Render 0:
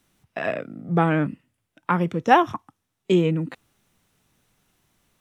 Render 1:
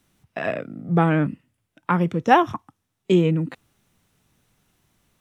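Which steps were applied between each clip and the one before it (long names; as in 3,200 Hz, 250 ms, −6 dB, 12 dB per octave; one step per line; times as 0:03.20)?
parametric band 86 Hz +3.5 dB 3 octaves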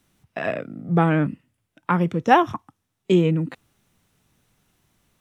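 no processing that can be heard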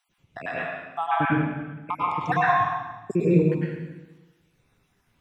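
time-frequency cells dropped at random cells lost 60%
convolution reverb RT60 1.1 s, pre-delay 94 ms, DRR −8 dB
level −5 dB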